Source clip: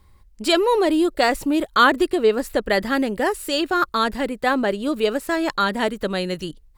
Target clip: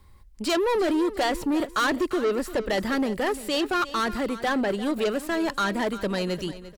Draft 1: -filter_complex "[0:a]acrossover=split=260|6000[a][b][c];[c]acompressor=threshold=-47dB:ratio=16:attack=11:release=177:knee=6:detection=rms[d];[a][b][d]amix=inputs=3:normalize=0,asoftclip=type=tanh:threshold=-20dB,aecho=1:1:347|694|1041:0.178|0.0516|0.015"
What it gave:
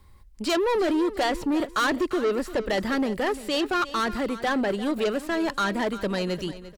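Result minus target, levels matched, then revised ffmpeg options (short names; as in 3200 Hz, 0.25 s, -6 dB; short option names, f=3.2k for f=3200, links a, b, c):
compressor: peak gain reduction +7 dB
-filter_complex "[0:a]acrossover=split=260|6000[a][b][c];[c]acompressor=threshold=-39.5dB:ratio=16:attack=11:release=177:knee=6:detection=rms[d];[a][b][d]amix=inputs=3:normalize=0,asoftclip=type=tanh:threshold=-20dB,aecho=1:1:347|694|1041:0.178|0.0516|0.015"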